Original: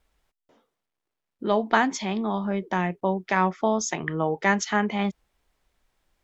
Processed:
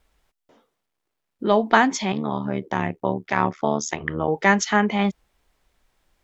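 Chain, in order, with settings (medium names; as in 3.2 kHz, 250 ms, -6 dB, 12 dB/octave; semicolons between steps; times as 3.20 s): 2.12–4.28 s: AM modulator 74 Hz, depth 80%; trim +4.5 dB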